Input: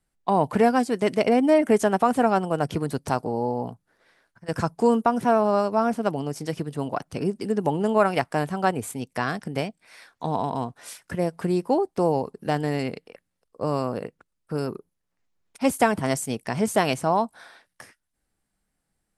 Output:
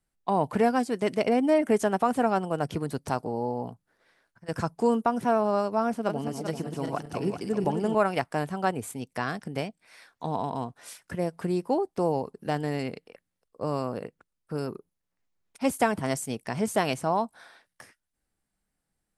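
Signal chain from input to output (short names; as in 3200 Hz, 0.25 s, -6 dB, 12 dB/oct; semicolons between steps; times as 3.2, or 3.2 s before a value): 5.89–7.95 regenerating reverse delay 0.195 s, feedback 62%, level -5.5 dB; gain -4 dB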